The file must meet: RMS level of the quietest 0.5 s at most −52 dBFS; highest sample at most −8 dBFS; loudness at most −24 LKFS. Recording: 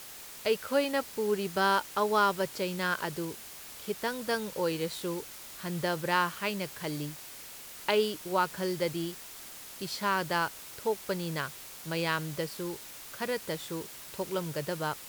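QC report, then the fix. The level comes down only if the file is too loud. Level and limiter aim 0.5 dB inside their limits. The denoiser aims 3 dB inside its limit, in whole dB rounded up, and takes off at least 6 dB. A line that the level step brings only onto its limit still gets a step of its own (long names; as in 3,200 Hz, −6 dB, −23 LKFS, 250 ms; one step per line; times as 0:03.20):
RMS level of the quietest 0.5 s −46 dBFS: out of spec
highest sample −12.5 dBFS: in spec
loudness −32.0 LKFS: in spec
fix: broadband denoise 9 dB, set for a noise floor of −46 dBFS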